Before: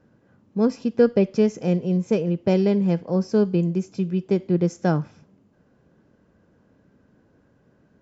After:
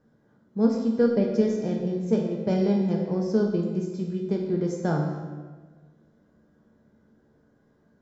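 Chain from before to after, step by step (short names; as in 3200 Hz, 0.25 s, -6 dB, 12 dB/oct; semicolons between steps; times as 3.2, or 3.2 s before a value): bell 2600 Hz -11.5 dB 0.24 oct; resonator 74 Hz, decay 0.91 s, harmonics all, mix 80%; on a send: reverb RT60 1.4 s, pre-delay 4 ms, DRR 2 dB; on the sum: gain +5 dB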